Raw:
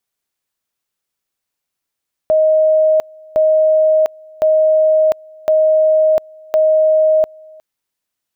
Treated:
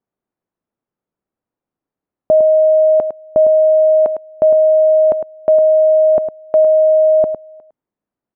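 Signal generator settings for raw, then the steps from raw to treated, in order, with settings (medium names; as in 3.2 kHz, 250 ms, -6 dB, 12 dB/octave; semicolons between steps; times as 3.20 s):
two-level tone 626 Hz -8.5 dBFS, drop 27.5 dB, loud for 0.70 s, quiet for 0.36 s, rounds 5
low-pass 1.1 kHz 12 dB/octave; peaking EQ 240 Hz +8.5 dB 2.2 oct; on a send: delay 106 ms -9.5 dB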